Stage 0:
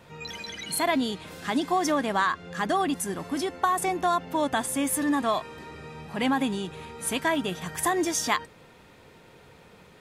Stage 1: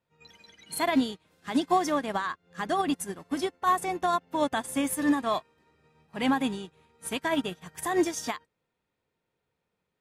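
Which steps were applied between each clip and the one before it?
brickwall limiter −19 dBFS, peak gain reduction 9 dB
expander for the loud parts 2.5 to 1, over −46 dBFS
level +5 dB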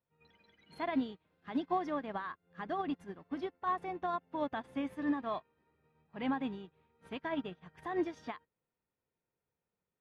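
high-frequency loss of the air 320 metres
level −8 dB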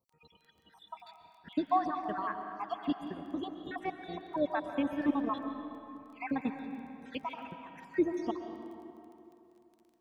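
time-frequency cells dropped at random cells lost 65%
surface crackle 12 per second −57 dBFS
convolution reverb RT60 2.9 s, pre-delay 90 ms, DRR 6 dB
level +6 dB

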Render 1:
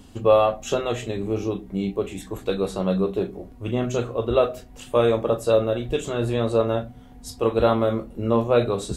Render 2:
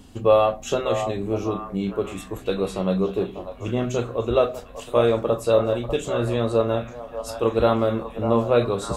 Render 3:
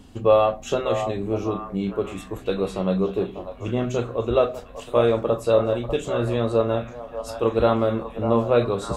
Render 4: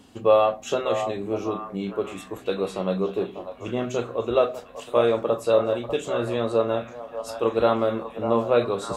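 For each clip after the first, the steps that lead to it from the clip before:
echo through a band-pass that steps 595 ms, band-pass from 810 Hz, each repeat 0.7 octaves, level −6 dB
high-shelf EQ 5,600 Hz −5.5 dB
high-pass filter 270 Hz 6 dB per octave

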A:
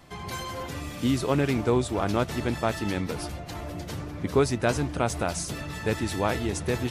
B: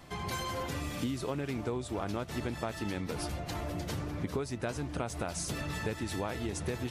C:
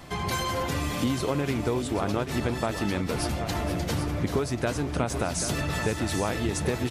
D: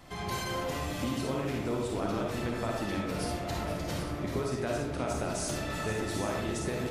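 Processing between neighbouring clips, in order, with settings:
downward compressor 10 to 1, threshold −31 dBFS, peak gain reduction 14.5 dB
multi-tap delay 474/785 ms −14/−10 dB; level +7.5 dB
comb and all-pass reverb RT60 0.88 s, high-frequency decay 0.45×, pre-delay 10 ms, DRR −1.5 dB; level −8.5 dB

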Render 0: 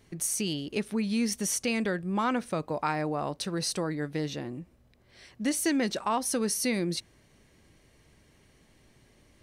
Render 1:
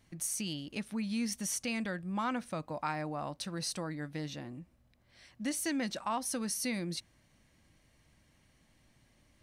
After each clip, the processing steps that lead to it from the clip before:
parametric band 410 Hz −12 dB 0.35 octaves
level −5.5 dB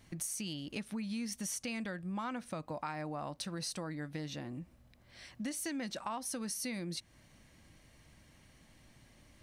downward compressor 3 to 1, threshold −45 dBFS, peak gain reduction 11.5 dB
level +5.5 dB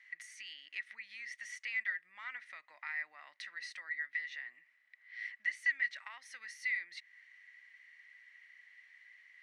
four-pole ladder band-pass 2,000 Hz, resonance 90%
level +9 dB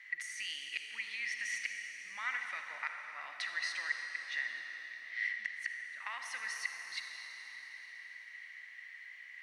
gate with flip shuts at −30 dBFS, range −30 dB
convolution reverb RT60 4.8 s, pre-delay 40 ms, DRR 2.5 dB
level +7 dB

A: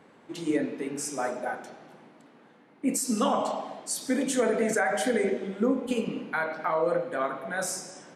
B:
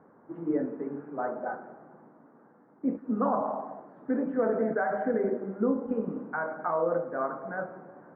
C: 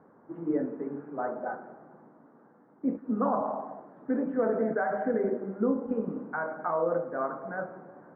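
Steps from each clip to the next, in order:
Butterworth low-pass 1,500 Hz 36 dB per octave; level −1.5 dB
high-frequency loss of the air 120 metres

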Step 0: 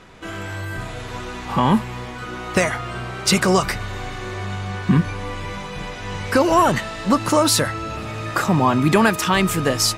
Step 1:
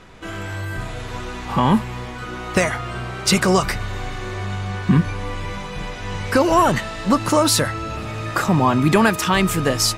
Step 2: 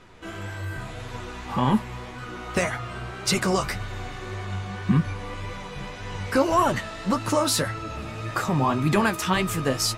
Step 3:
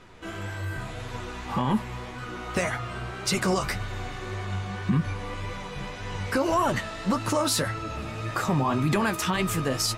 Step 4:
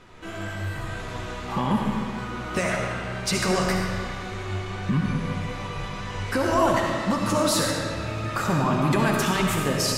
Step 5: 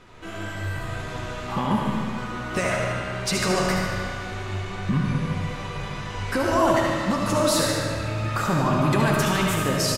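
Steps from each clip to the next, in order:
low-shelf EQ 70 Hz +5.5 dB
flanger 1.8 Hz, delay 6.8 ms, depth 8.7 ms, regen +40%; level −2 dB
brickwall limiter −15.5 dBFS, peak gain reduction 6.5 dB
comb and all-pass reverb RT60 1.9 s, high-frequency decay 0.8×, pre-delay 30 ms, DRR 0 dB
repeating echo 74 ms, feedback 58%, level −8 dB

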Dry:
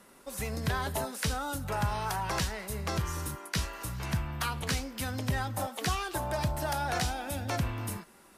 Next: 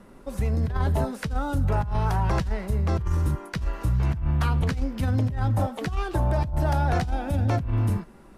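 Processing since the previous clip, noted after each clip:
spectral tilt −3.5 dB per octave
compressor whose output falls as the input rises −25 dBFS, ratio −1
level +1.5 dB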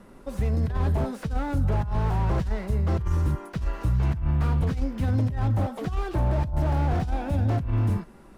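slew-rate limiting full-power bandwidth 26 Hz

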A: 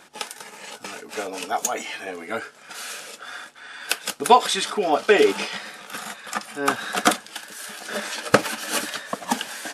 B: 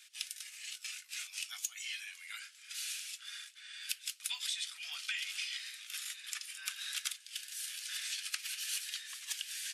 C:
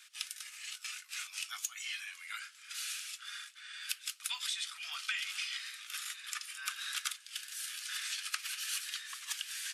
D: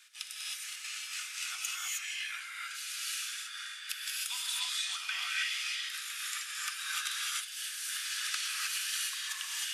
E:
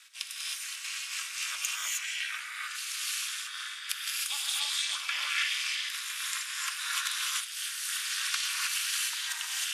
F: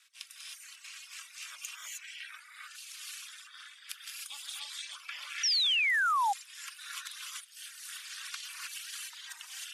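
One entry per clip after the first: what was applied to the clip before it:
inverse Chebyshev high-pass filter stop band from 390 Hz, stop band 80 dB; downward compressor 5 to 1, threshold −32 dBFS, peak gain reduction 13 dB; level −3.5 dB
parametric band 1,200 Hz +11 dB 0.75 octaves
reverb whose tail is shaped and stops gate 340 ms rising, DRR −5 dB; level −2 dB
ring modulation 150 Hz; level +6.5 dB
sound drawn into the spectrogram fall, 0:05.43–0:06.33, 770–5,900 Hz −19 dBFS; reverb reduction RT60 1.2 s; level −8.5 dB

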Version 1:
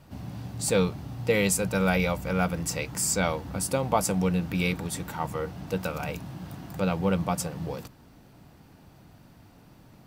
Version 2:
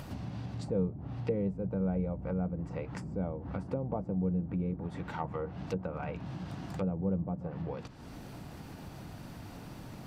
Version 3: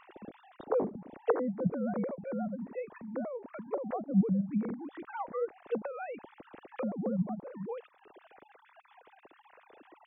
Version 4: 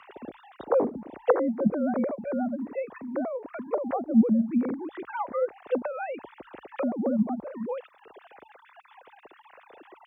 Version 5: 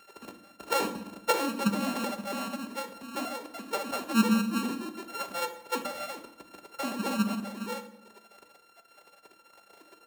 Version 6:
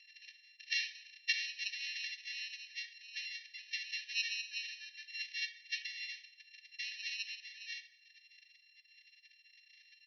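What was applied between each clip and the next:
treble cut that deepens with the level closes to 450 Hz, closed at −24 dBFS; upward compression, threshold −28 dBFS; level −5 dB
three sine waves on the formant tracks
floating-point word with a short mantissa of 8 bits; frequency shifter +31 Hz; level +6.5 dB
samples sorted by size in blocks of 32 samples; on a send at −6.5 dB: convolution reverb RT60 0.85 s, pre-delay 5 ms; on the sum: level −5.5 dB
linear-phase brick-wall band-pass 1,700–6,100 Hz

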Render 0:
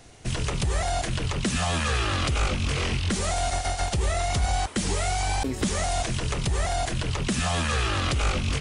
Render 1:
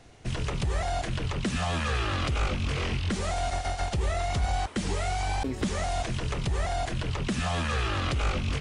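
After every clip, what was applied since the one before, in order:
high-shelf EQ 6,500 Hz −12 dB
level −2.5 dB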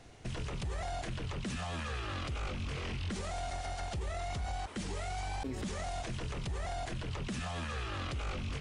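brickwall limiter −28.5 dBFS, peak gain reduction 11 dB
level −2 dB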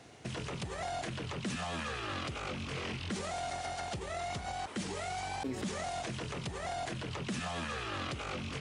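high-pass filter 130 Hz 12 dB per octave
level +2.5 dB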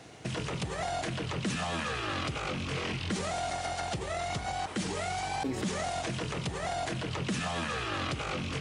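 convolution reverb RT60 0.85 s, pre-delay 6 ms, DRR 13.5 dB
level +4.5 dB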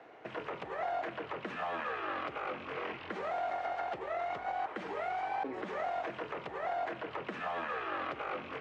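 low-pass filter 5,100 Hz 12 dB per octave
three-way crossover with the lows and the highs turned down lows −23 dB, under 340 Hz, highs −23 dB, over 2,200 Hz

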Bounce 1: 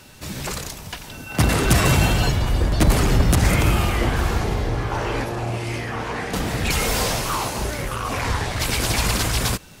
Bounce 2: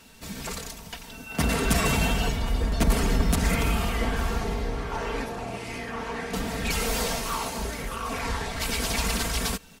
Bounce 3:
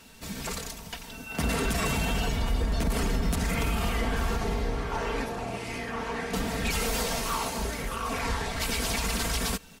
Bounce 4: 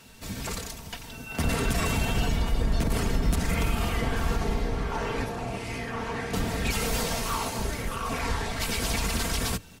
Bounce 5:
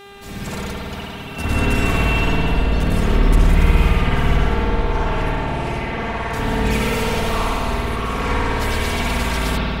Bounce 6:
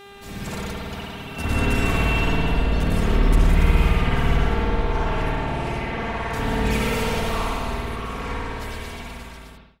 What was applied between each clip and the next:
comb filter 4.4 ms, depth 65%; level −7 dB
brickwall limiter −18.5 dBFS, peak gain reduction 9 dB
sub-octave generator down 1 octave, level −1 dB
spring reverb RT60 2.9 s, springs 54 ms, chirp 65 ms, DRR −9.5 dB; hum with harmonics 400 Hz, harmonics 10, −40 dBFS −4 dB per octave; level −1 dB
fade-out on the ending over 2.78 s; level −3 dB

